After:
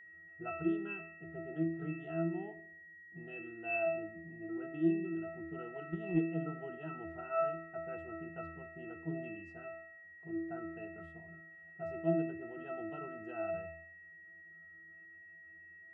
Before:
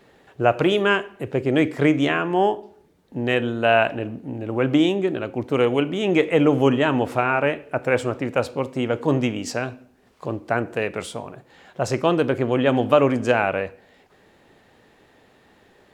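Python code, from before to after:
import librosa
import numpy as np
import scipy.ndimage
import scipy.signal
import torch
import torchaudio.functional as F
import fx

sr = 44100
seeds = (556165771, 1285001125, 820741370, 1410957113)

y = fx.octave_resonator(x, sr, note='E', decay_s=0.69)
y = y + 10.0 ** (-54.0 / 20.0) * np.sin(2.0 * np.pi * 1900.0 * np.arange(len(y)) / sr)
y = fx.transient(y, sr, attack_db=7, sustain_db=3, at=(5.73, 6.18), fade=0.02)
y = y * librosa.db_to_amplitude(1.0)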